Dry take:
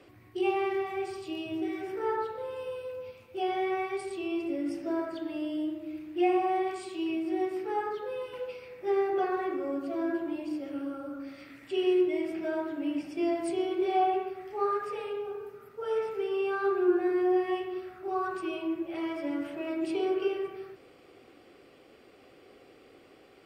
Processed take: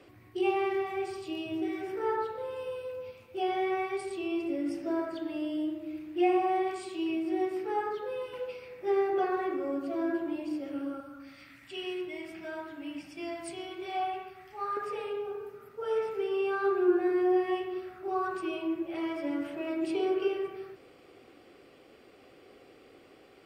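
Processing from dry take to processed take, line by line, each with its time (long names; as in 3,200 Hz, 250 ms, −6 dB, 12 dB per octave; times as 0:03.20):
0:11.00–0:14.77: parametric band 420 Hz −13 dB 1.5 octaves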